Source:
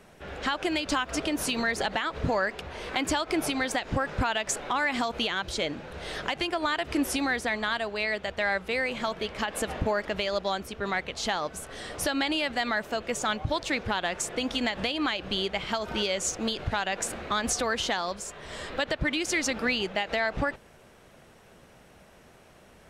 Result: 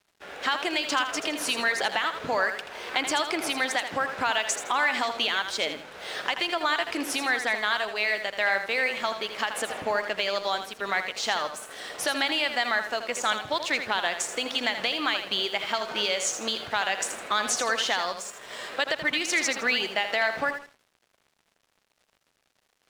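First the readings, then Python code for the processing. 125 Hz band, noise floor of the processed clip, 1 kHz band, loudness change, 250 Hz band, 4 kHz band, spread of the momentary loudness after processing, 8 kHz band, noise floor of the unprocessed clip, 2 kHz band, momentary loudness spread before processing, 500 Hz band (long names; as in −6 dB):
−13.5 dB, −72 dBFS, +2.5 dB, +2.5 dB, −5.5 dB, +4.0 dB, 6 LU, +2.0 dB, −55 dBFS, +4.0 dB, 5 LU, 0.0 dB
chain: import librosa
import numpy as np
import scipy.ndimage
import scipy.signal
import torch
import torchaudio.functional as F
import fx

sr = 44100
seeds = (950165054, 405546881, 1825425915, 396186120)

p1 = fx.weighting(x, sr, curve='A')
p2 = p1 + fx.echo_feedback(p1, sr, ms=81, feedback_pct=32, wet_db=-8.5, dry=0)
p3 = np.sign(p2) * np.maximum(np.abs(p2) - 10.0 ** (-51.5 / 20.0), 0.0)
y = p3 * 10.0 ** (2.5 / 20.0)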